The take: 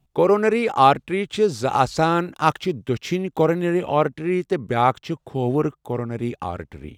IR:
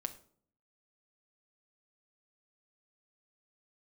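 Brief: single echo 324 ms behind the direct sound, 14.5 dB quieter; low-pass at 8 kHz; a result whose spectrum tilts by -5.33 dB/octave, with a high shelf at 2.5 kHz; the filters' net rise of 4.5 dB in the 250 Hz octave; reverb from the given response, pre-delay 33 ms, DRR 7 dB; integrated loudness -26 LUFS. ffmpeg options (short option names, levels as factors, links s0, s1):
-filter_complex "[0:a]lowpass=8000,equalizer=f=250:t=o:g=6.5,highshelf=f=2500:g=6.5,aecho=1:1:324:0.188,asplit=2[s0][s1];[1:a]atrim=start_sample=2205,adelay=33[s2];[s1][s2]afir=irnorm=-1:irlink=0,volume=0.501[s3];[s0][s3]amix=inputs=2:normalize=0,volume=0.398"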